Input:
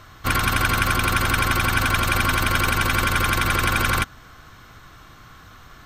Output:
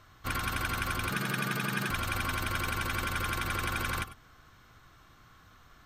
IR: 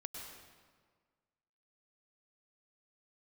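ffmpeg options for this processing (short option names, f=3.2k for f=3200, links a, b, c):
-filter_complex "[0:a]asettb=1/sr,asplit=3[a][b][c];[a]atrim=end=1.094[d];[b]atrim=start=1.09:end=1.91,asetpts=PTS-STARTPTS,afade=t=in:d=0.004:c=qsin,afade=t=out:st=0.816:d=0.004:c=qsin,afreqshift=98[e];[c]atrim=start=1.906[f];[d][e]acrossfade=d=0.004:c1=hsin:c2=qsin[g];[g][f]acrossfade=d=0.004:c1=qsin:c2=hsin[h];[1:a]atrim=start_sample=2205,atrim=end_sample=4410[i];[h][i]afir=irnorm=-1:irlink=0,volume=-7dB"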